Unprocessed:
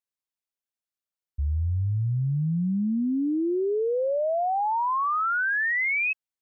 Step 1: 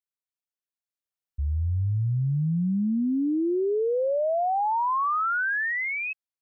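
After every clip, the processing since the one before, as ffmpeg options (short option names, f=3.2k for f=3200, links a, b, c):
-af "dynaudnorm=f=460:g=5:m=8dB,volume=-7.5dB"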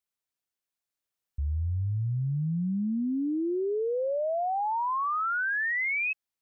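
-af "alimiter=level_in=5.5dB:limit=-24dB:level=0:latency=1:release=109,volume=-5.5dB,volume=4dB"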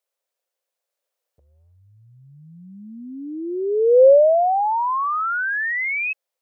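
-af "highpass=f=530:t=q:w=5.4,volume=4.5dB"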